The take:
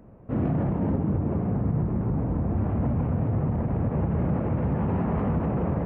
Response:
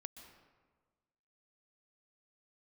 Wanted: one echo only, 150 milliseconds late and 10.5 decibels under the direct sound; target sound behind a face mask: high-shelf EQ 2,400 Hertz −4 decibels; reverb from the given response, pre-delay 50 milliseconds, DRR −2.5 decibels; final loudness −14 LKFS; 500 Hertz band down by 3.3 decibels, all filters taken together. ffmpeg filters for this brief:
-filter_complex "[0:a]equalizer=frequency=500:width_type=o:gain=-4,aecho=1:1:150:0.299,asplit=2[link_01][link_02];[1:a]atrim=start_sample=2205,adelay=50[link_03];[link_02][link_03]afir=irnorm=-1:irlink=0,volume=7.5dB[link_04];[link_01][link_04]amix=inputs=2:normalize=0,highshelf=frequency=2400:gain=-4,volume=7.5dB"

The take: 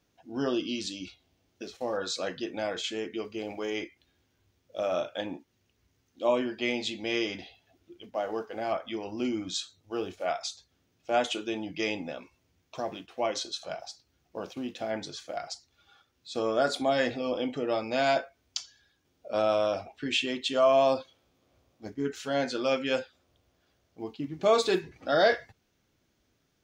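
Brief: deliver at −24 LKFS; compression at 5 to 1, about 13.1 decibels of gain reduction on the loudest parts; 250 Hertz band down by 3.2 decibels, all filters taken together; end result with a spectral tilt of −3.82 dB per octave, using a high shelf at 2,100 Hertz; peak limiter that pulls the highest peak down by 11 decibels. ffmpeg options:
ffmpeg -i in.wav -af "equalizer=frequency=250:width_type=o:gain=-4,highshelf=frequency=2100:gain=-4,acompressor=threshold=-34dB:ratio=5,volume=17dB,alimiter=limit=-12dB:level=0:latency=1" out.wav

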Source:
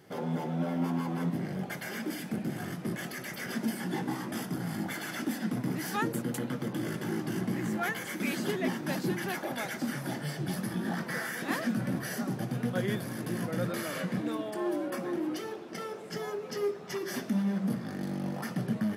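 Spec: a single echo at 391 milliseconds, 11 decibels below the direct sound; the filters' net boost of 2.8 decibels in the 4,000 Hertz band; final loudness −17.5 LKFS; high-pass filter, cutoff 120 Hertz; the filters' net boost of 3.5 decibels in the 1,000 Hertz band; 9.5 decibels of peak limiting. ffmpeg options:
ffmpeg -i in.wav -af "highpass=120,equalizer=frequency=1000:width_type=o:gain=4.5,equalizer=frequency=4000:width_type=o:gain=3.5,alimiter=level_in=1.5dB:limit=-24dB:level=0:latency=1,volume=-1.5dB,aecho=1:1:391:0.282,volume=17dB" out.wav

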